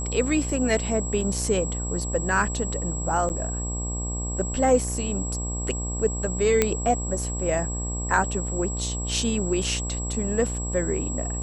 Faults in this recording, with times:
buzz 60 Hz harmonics 20 -30 dBFS
whine 7.7 kHz -32 dBFS
1.21 s: dropout 3 ms
3.29–3.30 s: dropout 9.2 ms
6.62 s: pop -5 dBFS

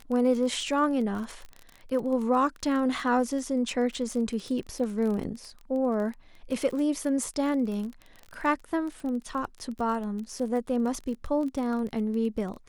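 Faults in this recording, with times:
crackle 27 per s -33 dBFS

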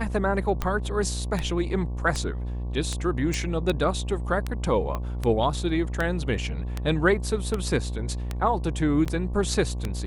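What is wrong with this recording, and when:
buzz 60 Hz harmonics 19 -30 dBFS
tick 78 rpm -13 dBFS
3.34 s: pop
4.95 s: pop -17 dBFS
9.05–9.06 s: dropout 7.4 ms

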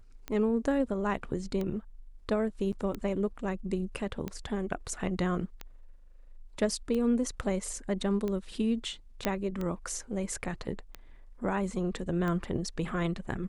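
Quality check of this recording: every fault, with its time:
tick 45 rpm -22 dBFS
2.72–2.73 s: dropout 7.7 ms
9.25 s: pop -12 dBFS

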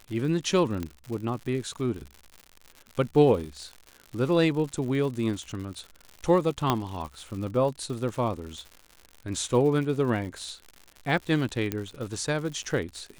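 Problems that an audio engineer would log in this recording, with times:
crackle 130 per s -35 dBFS
0.83 s: pop -19 dBFS
6.70 s: pop -9 dBFS
11.72 s: pop -13 dBFS

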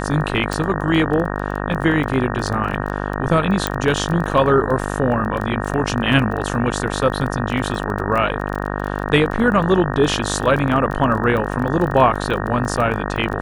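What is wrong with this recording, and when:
buzz 50 Hz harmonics 37 -24 dBFS
crackle 16 per s -23 dBFS
0.53 s: pop
3.67 s: pop -3 dBFS

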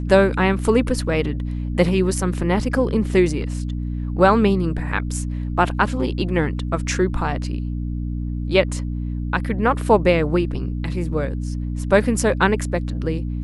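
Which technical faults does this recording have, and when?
hum 60 Hz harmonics 5 -25 dBFS

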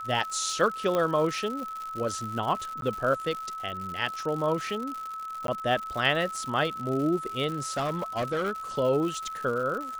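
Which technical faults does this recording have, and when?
crackle 150 per s -33 dBFS
whine 1.3 kHz -34 dBFS
0.95 s: pop -15 dBFS
2.81–2.82 s: dropout
5.47–5.48 s: dropout 12 ms
7.47–8.51 s: clipped -24.5 dBFS

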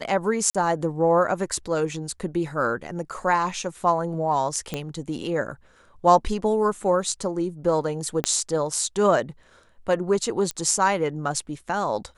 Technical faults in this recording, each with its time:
0.50–0.55 s: dropout 46 ms
4.74 s: pop -13 dBFS
8.24 s: pop -8 dBFS
10.51 s: pop -14 dBFS

